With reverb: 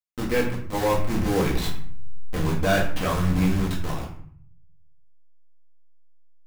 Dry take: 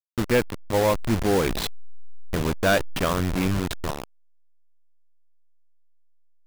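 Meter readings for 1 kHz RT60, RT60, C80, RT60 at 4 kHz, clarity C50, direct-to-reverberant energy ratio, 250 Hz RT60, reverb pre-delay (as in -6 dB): 0.55 s, 0.55 s, 9.5 dB, 0.40 s, 6.5 dB, -4.5 dB, 0.80 s, 4 ms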